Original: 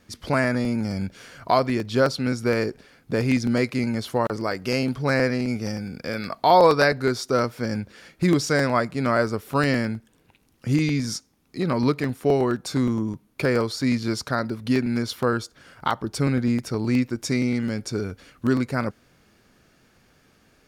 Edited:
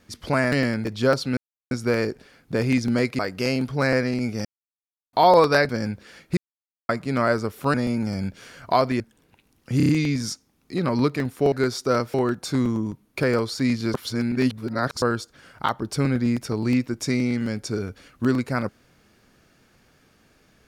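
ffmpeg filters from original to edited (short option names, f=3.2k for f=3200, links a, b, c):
-filter_complex "[0:a]asplit=20[a][b][c][d][e][f][g][h][i][j][k][l][m][n][o][p][q][r][s][t];[a]atrim=end=0.522[u];[b]atrim=start=9.628:end=9.962[v];[c]atrim=start=1.778:end=2.3,asetpts=PTS-STARTPTS,afade=t=out:st=0.518:d=0.004:c=hsin,apad=pad_dur=0.34[w];[d]atrim=start=2.3:end=3.782,asetpts=PTS-STARTPTS,afade=t=in:d=0.004:c=hsin[x];[e]atrim=start=4.458:end=5.72,asetpts=PTS-STARTPTS,afade=t=out:st=1.258:d=0.004:c=hsin[y];[f]atrim=start=5.72:end=6.4,asetpts=PTS-STARTPTS,volume=0[z];[g]atrim=start=6.4:end=6.962,asetpts=PTS-STARTPTS,afade=t=in:d=0.004:c=hsin[aa];[h]atrim=start=7.578:end=8.26,asetpts=PTS-STARTPTS,afade=t=out:st=0.678:d=0.004:c=hsin[ab];[i]atrim=start=8.26:end=8.78,asetpts=PTS-STARTPTS,volume=0[ac];[j]atrim=start=8.78:end=9.632,asetpts=PTS-STARTPTS,afade=t=in:d=0.004:c=hsin[ad];[k]atrim=start=0.518:end=1.782[ae];[l]atrim=start=9.958:end=10.762[af];[m]atrim=start=10.728:end=10.762[ag];[n]atrim=start=10.728:end=10.762[ah];[o]atrim=start=10.728:end=10.762[ai];[p]atrim=start=10.728:end=12.362[aj];[q]atrim=start=6.958:end=7.582[ak];[r]atrim=start=12.358:end=14.162[al];[s]atrim=start=14.158:end=15.242,asetpts=PTS-STARTPTS,areverse[am];[t]atrim=start=15.238[an];[u][v]acrossfade=d=0.004:c1=hsin:c2=hsin[ao];[w][x]concat=n=2:v=0:a=1[ap];[ao][ap]acrossfade=d=0.004:c1=hsin:c2=hsin[aq];[y][z][aa]concat=n=3:v=0:a=1[ar];[aq][ar]acrossfade=d=0.004:c1=hsin:c2=hsin[as];[ab][ac][ad]concat=n=3:v=0:a=1[at];[as][at]acrossfade=d=0.004:c1=hsin:c2=hsin[au];[au][ae]acrossfade=d=0.004:c1=hsin:c2=hsin[av];[av][af]acrossfade=d=0.004:c1=hsin:c2=hsin[aw];[aw][ag]acrossfade=d=0.004:c1=hsin:c2=hsin[ax];[ax][ah]acrossfade=d=0.004:c1=hsin:c2=hsin[ay];[ay][ai]acrossfade=d=0.004:c1=hsin:c2=hsin[az];[az][aj]acrossfade=d=0.004:c1=hsin:c2=hsin[ba];[ba][ak]acrossfade=d=0.004:c1=hsin:c2=hsin[bb];[bb][al]acrossfade=d=0.004:c1=hsin:c2=hsin[bc];[bc][am]acrossfade=d=0.004:c1=hsin:c2=hsin[bd];[bd][an]acrossfade=d=0.004:c1=hsin:c2=hsin"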